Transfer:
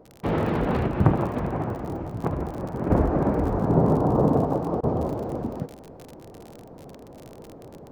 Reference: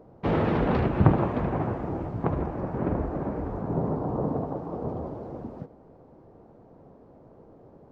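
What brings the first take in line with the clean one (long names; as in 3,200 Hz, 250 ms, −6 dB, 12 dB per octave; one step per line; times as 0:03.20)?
click removal
repair the gap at 0:04.81, 20 ms
level 0 dB, from 0:02.90 −8 dB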